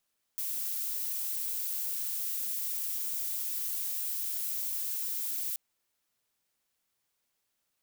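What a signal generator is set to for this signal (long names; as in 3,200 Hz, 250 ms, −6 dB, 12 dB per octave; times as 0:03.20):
noise violet, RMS −34 dBFS 5.18 s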